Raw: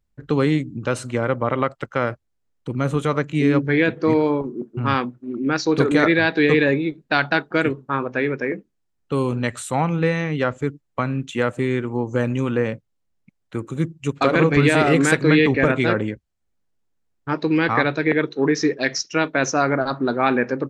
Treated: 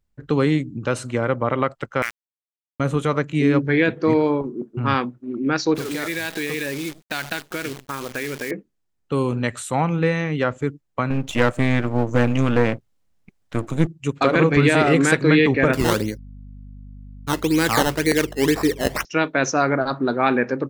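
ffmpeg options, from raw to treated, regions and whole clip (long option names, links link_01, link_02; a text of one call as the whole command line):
ffmpeg -i in.wav -filter_complex "[0:a]asettb=1/sr,asplit=3[link_01][link_02][link_03];[link_01]atrim=end=2.024[link_04];[link_02]atrim=start=2.02:end=2.8,asetpts=PTS-STARTPTS,afade=type=in:duration=0.004:curve=qsin,afade=type=out:start_time=0.776:duration=0.004:curve=qsin,highpass=frequency=2100:width_type=q:width=4,aeval=exprs='val(0)*gte(abs(val(0)),0.0531)':channel_layout=same[link_05];[link_03]atrim=start=2.796[link_06];[link_04][link_05]acrossfade=duration=0.004:curve1=hsin:curve2=qsin[link_07];[link_07][link_06]acrossfade=duration=0.004:curve1=qsin:curve2=hsin,asettb=1/sr,asplit=3[link_08][link_09][link_10];[link_08]atrim=end=5.744[link_11];[link_09]atrim=start=5.74:end=8.51,asetpts=PTS-STARTPTS,afade=type=in:duration=0.004:curve=qsin,afade=type=out:start_time=2.766:duration=0.004:curve=qsin,acompressor=threshold=-26dB:ratio=4:attack=3.2:release=140:knee=1:detection=peak,acrusher=bits=7:dc=4:mix=0:aa=0.000001,adynamicequalizer=threshold=0.00631:dfrequency=1800:dqfactor=0.7:tfrequency=1800:tqfactor=0.7:attack=5:release=100:ratio=0.375:range=3.5:mode=boostabove:tftype=highshelf[link_12];[link_10]atrim=start=8.506[link_13];[link_11][link_12]acrossfade=duration=0.004:curve1=hsin:curve2=qsin[link_14];[link_14][link_13]acrossfade=duration=0.004:curve1=qsin:curve2=hsin,asettb=1/sr,asplit=3[link_15][link_16][link_17];[link_15]atrim=end=11.104[link_18];[link_16]atrim=start=11.1:end=13.87,asetpts=PTS-STARTPTS,afade=type=in:duration=0.004:curve=qsin,afade=type=out:start_time=2.766:duration=0.004:curve=qsin,aeval=exprs='if(lt(val(0),0),0.251*val(0),val(0))':channel_layout=same,bandreject=frequency=380:width=8.3,acontrast=77[link_19];[link_17]atrim=start=13.866[link_20];[link_18][link_19]acrossfade=duration=0.004:curve1=hsin:curve2=qsin[link_21];[link_21][link_20]acrossfade=duration=0.004:curve1=qsin:curve2=hsin,asettb=1/sr,asplit=3[link_22][link_23][link_24];[link_22]atrim=end=15.734[link_25];[link_23]atrim=start=15.73:end=19.05,asetpts=PTS-STARTPTS,afade=type=in:duration=0.004:curve=qsin,afade=type=out:start_time=3.316:duration=0.004:curve=qsin,acrusher=samples=13:mix=1:aa=0.000001:lfo=1:lforange=13:lforate=2,aeval=exprs='val(0)+0.0126*(sin(2*PI*50*n/s)+sin(2*PI*2*50*n/s)/2+sin(2*PI*3*50*n/s)/3+sin(2*PI*4*50*n/s)/4+sin(2*PI*5*50*n/s)/5)':channel_layout=same[link_26];[link_24]atrim=start=19.046[link_27];[link_25][link_26]acrossfade=duration=0.004:curve1=hsin:curve2=qsin[link_28];[link_28][link_27]acrossfade=duration=0.004:curve1=qsin:curve2=hsin" out.wav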